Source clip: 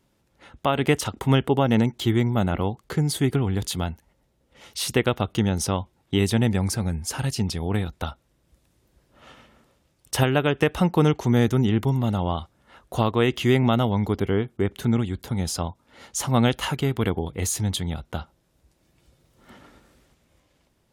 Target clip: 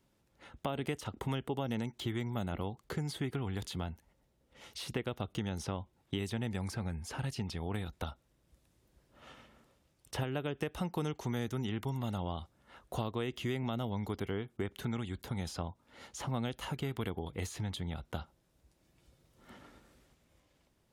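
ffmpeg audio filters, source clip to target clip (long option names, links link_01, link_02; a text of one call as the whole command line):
ffmpeg -i in.wav -filter_complex "[0:a]acrossover=split=720|3800[link_01][link_02][link_03];[link_01]acompressor=threshold=-29dB:ratio=4[link_04];[link_02]acompressor=threshold=-38dB:ratio=4[link_05];[link_03]acompressor=threshold=-46dB:ratio=4[link_06];[link_04][link_05][link_06]amix=inputs=3:normalize=0,volume=-6dB" out.wav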